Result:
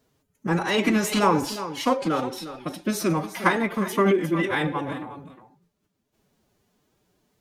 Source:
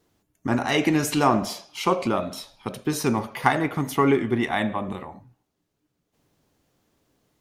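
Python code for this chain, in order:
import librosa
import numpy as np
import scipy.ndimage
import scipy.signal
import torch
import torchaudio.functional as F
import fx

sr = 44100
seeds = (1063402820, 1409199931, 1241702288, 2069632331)

y = x + 10.0 ** (-12.5 / 20.0) * np.pad(x, (int(356 * sr / 1000.0), 0))[:len(x)]
y = fx.pitch_keep_formants(y, sr, semitones=6.0)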